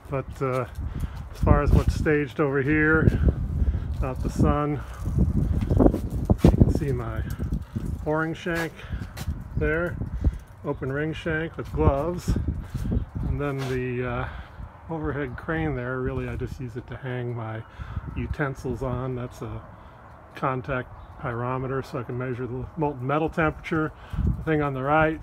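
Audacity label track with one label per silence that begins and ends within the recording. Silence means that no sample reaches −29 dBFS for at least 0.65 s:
19.570000	20.370000	silence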